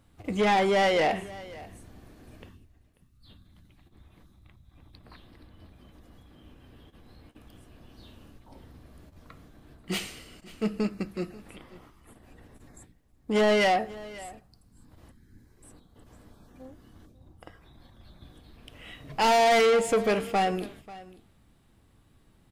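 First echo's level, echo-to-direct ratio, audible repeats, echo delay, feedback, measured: −19.5 dB, −19.5 dB, 1, 539 ms, repeats not evenly spaced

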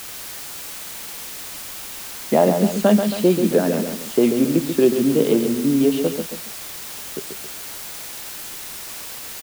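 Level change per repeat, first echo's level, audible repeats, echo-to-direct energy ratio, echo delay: −7.0 dB, −7.0 dB, 2, −6.0 dB, 136 ms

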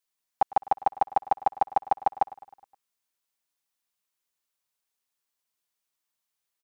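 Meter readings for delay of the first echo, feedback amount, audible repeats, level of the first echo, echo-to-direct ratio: 104 ms, 59%, 4, −20.5 dB, −18.5 dB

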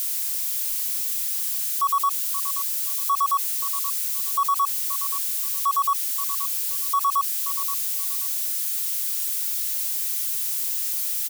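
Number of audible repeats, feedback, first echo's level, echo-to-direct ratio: 2, 20%, −12.5 dB, −12.5 dB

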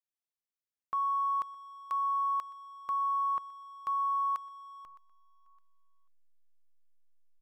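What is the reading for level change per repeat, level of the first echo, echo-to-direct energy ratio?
−11.5 dB, −23.0 dB, −22.5 dB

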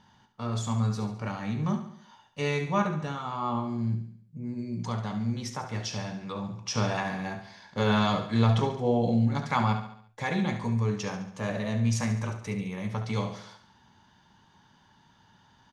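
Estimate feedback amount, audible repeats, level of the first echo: 50%, 5, −10.0 dB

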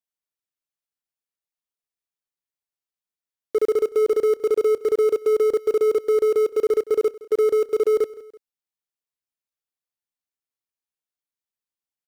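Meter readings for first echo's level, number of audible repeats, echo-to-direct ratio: −19.5 dB, 2, −18.5 dB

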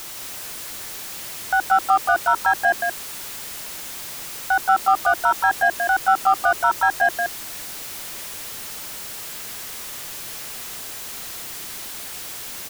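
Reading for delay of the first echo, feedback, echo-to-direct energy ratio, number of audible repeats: 174 ms, repeats not evenly spaced, −4.5 dB, 1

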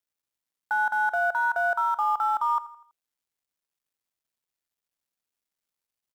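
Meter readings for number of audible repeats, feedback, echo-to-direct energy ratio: 3, 47%, −16.5 dB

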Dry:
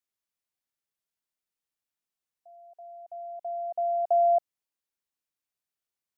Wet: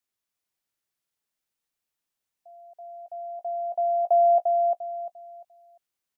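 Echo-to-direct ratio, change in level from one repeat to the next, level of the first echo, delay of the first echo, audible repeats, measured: −3.5 dB, −11.0 dB, −4.0 dB, 348 ms, 3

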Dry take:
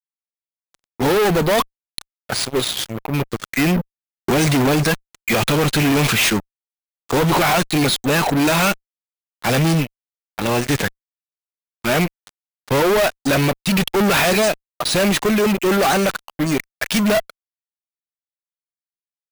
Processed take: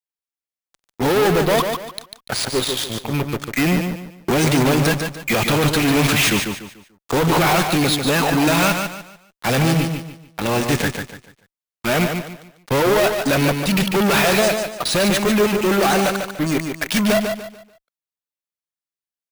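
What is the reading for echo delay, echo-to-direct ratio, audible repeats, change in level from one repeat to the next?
146 ms, −5.5 dB, 3, −10.0 dB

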